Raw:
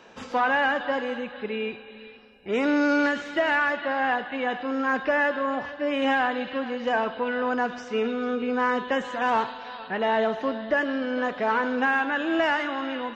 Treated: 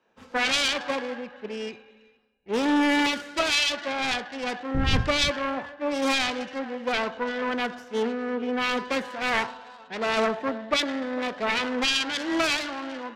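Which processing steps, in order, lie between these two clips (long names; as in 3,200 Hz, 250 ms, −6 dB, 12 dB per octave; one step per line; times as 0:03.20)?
phase distortion by the signal itself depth 0.32 ms
0:04.73–0:05.28: wind on the microphone 140 Hz −26 dBFS
multiband upward and downward expander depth 70%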